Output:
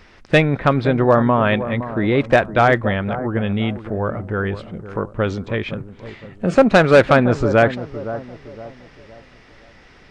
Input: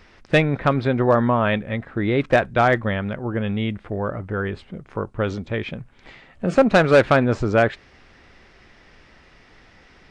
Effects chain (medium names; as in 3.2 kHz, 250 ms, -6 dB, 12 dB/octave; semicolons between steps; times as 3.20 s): bucket-brigade echo 514 ms, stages 4096, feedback 37%, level -12.5 dB; trim +3 dB